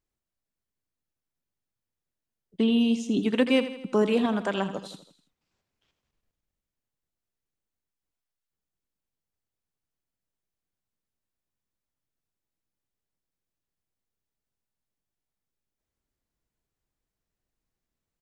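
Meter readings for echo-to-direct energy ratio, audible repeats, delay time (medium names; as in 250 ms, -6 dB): -10.5 dB, 4, 82 ms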